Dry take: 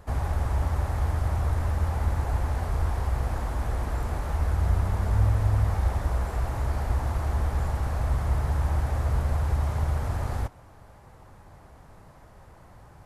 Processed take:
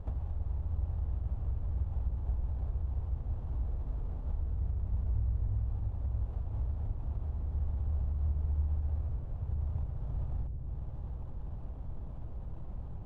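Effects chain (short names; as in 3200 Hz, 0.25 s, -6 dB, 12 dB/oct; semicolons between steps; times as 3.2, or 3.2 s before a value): median filter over 25 samples; tilt -3 dB/oct; compressor 4:1, threshold -32 dBFS, peak gain reduction 21.5 dB; analogue delay 0.326 s, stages 1024, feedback 79%, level -6 dB; gain -4 dB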